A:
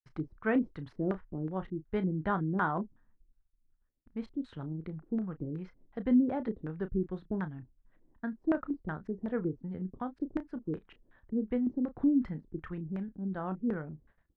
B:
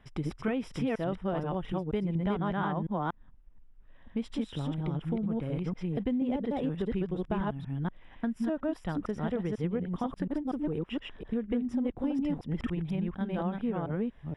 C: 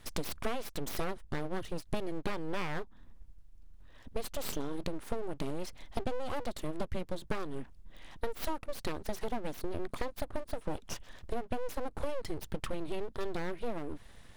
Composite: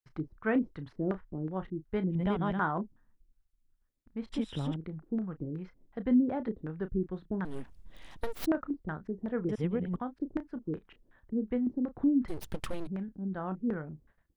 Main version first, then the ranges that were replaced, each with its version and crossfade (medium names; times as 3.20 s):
A
2.14–2.57 s: from B, crossfade 0.10 s
4.32–4.76 s: from B
7.45–8.46 s: from C
9.49–9.96 s: from B
12.28–12.87 s: from C